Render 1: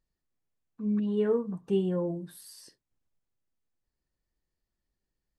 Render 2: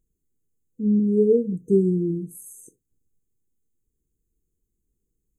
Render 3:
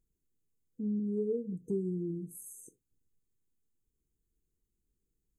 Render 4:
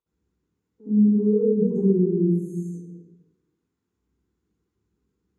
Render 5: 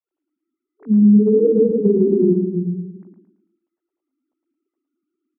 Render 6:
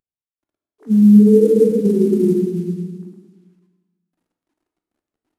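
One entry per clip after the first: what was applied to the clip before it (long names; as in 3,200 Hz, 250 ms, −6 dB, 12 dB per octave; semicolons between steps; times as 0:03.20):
brick-wall band-stop 500–6,200 Hz; level +8.5 dB
downward compressor 2 to 1, threshold −32 dBFS, peak gain reduction 10.5 dB; level −5.5 dB
resonant band-pass 960 Hz, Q 0.58; convolution reverb RT60 1.2 s, pre-delay 62 ms, DRR −11 dB
three sine waves on the formant tracks; downward compressor, threshold −20 dBFS, peak gain reduction 8 dB; repeating echo 111 ms, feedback 39%, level −6 dB; level +8.5 dB
variable-slope delta modulation 64 kbit/s; dense smooth reverb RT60 1.4 s, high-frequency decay 0.9×, DRR 4 dB; level −1 dB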